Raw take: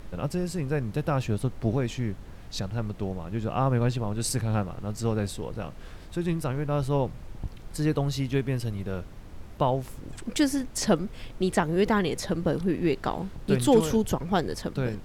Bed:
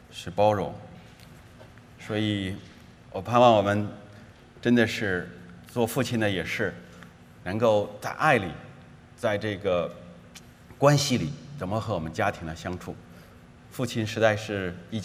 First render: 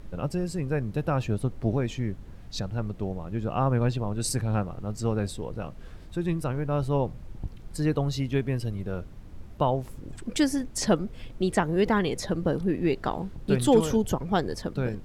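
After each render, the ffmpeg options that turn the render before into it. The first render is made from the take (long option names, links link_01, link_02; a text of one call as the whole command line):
ffmpeg -i in.wav -af "afftdn=noise_reduction=6:noise_floor=-44" out.wav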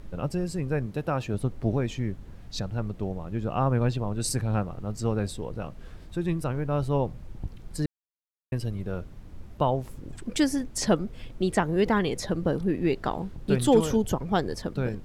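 ffmpeg -i in.wav -filter_complex "[0:a]asettb=1/sr,asplit=3[link_01][link_02][link_03];[link_01]atrim=end=0.864[link_04];[link_02]atrim=start=0.86:end=1.34,asetpts=PTS-STARTPTS,afade=type=in:duration=0.004:curve=qsin,afade=type=out:start_time=0.476:duration=0.004:curve=qsin,lowshelf=frequency=120:gain=-9[link_05];[link_03]atrim=start=1.336[link_06];[link_04][link_05]acrossfade=duration=0.004:curve1=hsin:curve2=qsin[link_07];[link_07][link_06]acrossfade=duration=0.004:curve1=qsin:curve2=hsin,asplit=3[link_08][link_09][link_10];[link_08]atrim=end=7.86,asetpts=PTS-STARTPTS,afade=type=out:start_time=7.856:duration=0.004:curve=hsin[link_11];[link_09]atrim=start=7.86:end=8.52,asetpts=PTS-STARTPTS,volume=0[link_12];[link_10]atrim=start=8.52,asetpts=PTS-STARTPTS,afade=type=in:duration=0.004:curve=hsin[link_13];[link_11][link_12][link_13]concat=n=3:v=0:a=1" out.wav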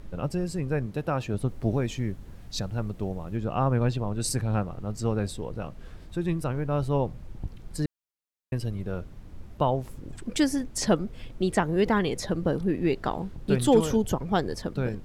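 ffmpeg -i in.wav -filter_complex "[0:a]asettb=1/sr,asplit=3[link_01][link_02][link_03];[link_01]atrim=end=1.484[link_04];[link_02]atrim=start=1.48:end=3.37,asetpts=PTS-STARTPTS,afade=type=in:duration=0.004:curve=qsin,afade=type=out:start_time=1.886:duration=0.004:curve=qsin,highshelf=frequency=7200:gain=7.5[link_05];[link_03]atrim=start=3.366[link_06];[link_04][link_05]acrossfade=duration=0.004:curve1=hsin:curve2=qsin[link_07];[link_07][link_06]acrossfade=duration=0.004:curve1=qsin:curve2=hsin" out.wav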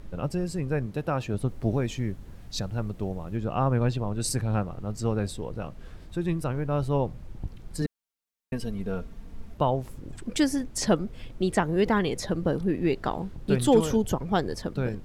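ffmpeg -i in.wav -filter_complex "[0:a]asettb=1/sr,asplit=3[link_01][link_02][link_03];[link_01]atrim=end=7.814[link_04];[link_02]atrim=start=7.81:end=9.54,asetpts=PTS-STARTPTS,afade=type=in:duration=0.004:curve=qsin,afade=type=out:start_time=1.726:duration=0.004:curve=qsin,aecho=1:1:4.4:0.65,atrim=end_sample=76293[link_05];[link_03]atrim=start=9.536[link_06];[link_04][link_05]acrossfade=duration=0.004:curve1=hsin:curve2=qsin[link_07];[link_07][link_06]acrossfade=duration=0.004:curve1=qsin:curve2=hsin" out.wav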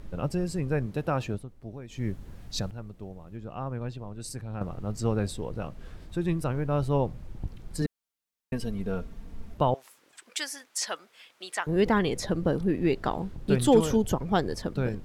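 ffmpeg -i in.wav -filter_complex "[0:a]asettb=1/sr,asplit=3[link_01][link_02][link_03];[link_01]atrim=end=9.744[link_04];[link_02]atrim=start=9.74:end=11.67,asetpts=PTS-STARTPTS,afade=type=in:duration=0.004:curve=qsin,afade=type=out:start_time=1.926:duration=0.004:curve=qsin,highpass=1200[link_05];[link_03]atrim=start=11.666[link_06];[link_04][link_05]acrossfade=duration=0.004:curve1=hsin:curve2=qsin[link_07];[link_07][link_06]acrossfade=duration=0.004:curve1=qsin:curve2=hsin,asplit=5[link_08][link_09][link_10][link_11][link_12];[link_08]atrim=end=1.45,asetpts=PTS-STARTPTS,afade=type=out:start_time=1.27:duration=0.18:silence=0.177828[link_13];[link_09]atrim=start=1.45:end=1.89,asetpts=PTS-STARTPTS,volume=-15dB[link_14];[link_10]atrim=start=1.89:end=2.712,asetpts=PTS-STARTPTS,afade=type=in:duration=0.18:silence=0.177828[link_15];[link_11]atrim=start=2.708:end=4.612,asetpts=PTS-STARTPTS,volume=-10dB[link_16];[link_12]atrim=start=4.608[link_17];[link_13][link_14][link_15]concat=n=3:v=0:a=1[link_18];[link_18][link_16]acrossfade=duration=0.004:curve1=hsin:curve2=hsin[link_19];[link_19][link_17]acrossfade=duration=0.004:curve1=hsin:curve2=hsin" out.wav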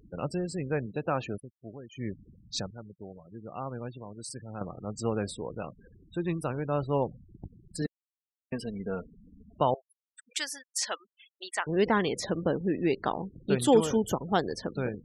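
ffmpeg -i in.wav -af "highpass=frequency=230:poles=1,afftfilt=real='re*gte(hypot(re,im),0.00891)':imag='im*gte(hypot(re,im),0.00891)':win_size=1024:overlap=0.75" out.wav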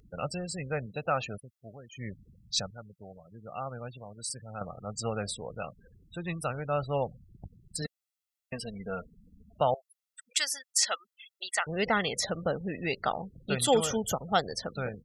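ffmpeg -i in.wav -af "tiltshelf=frequency=1100:gain=-4.5,aecho=1:1:1.5:0.56" out.wav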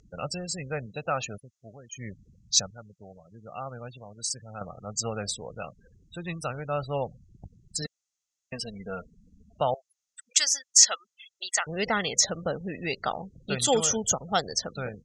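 ffmpeg -i in.wav -af "lowpass=frequency=6500:width_type=q:width=5.3" out.wav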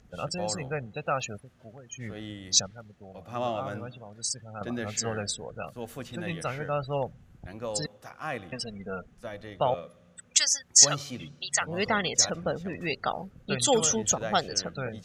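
ffmpeg -i in.wav -i bed.wav -filter_complex "[1:a]volume=-13.5dB[link_01];[0:a][link_01]amix=inputs=2:normalize=0" out.wav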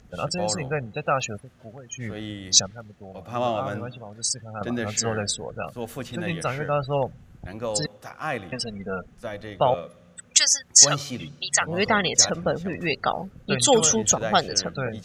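ffmpeg -i in.wav -af "volume=5.5dB,alimiter=limit=-1dB:level=0:latency=1" out.wav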